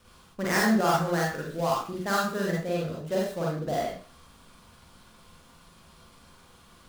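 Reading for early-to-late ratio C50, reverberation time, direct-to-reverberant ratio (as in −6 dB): 1.0 dB, 0.40 s, −4.0 dB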